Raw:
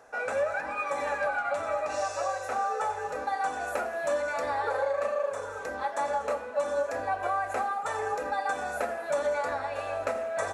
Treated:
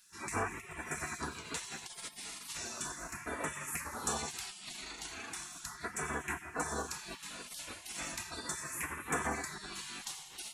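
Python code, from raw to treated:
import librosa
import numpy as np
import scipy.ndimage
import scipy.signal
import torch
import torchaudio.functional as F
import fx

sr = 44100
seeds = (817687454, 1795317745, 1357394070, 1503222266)

y = fx.phaser_stages(x, sr, stages=2, low_hz=690.0, high_hz=4300.0, hz=0.36, feedback_pct=15)
y = fx.spec_gate(y, sr, threshold_db=-25, keep='weak')
y = y * 10.0 ** (11.0 / 20.0)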